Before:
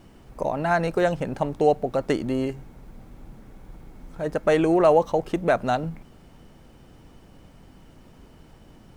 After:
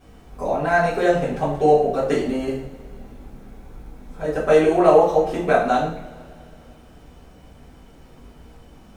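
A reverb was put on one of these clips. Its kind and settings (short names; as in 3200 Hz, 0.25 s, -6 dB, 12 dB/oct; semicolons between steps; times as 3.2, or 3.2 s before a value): two-slope reverb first 0.51 s, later 2.7 s, from -22 dB, DRR -10 dB; gain -6.5 dB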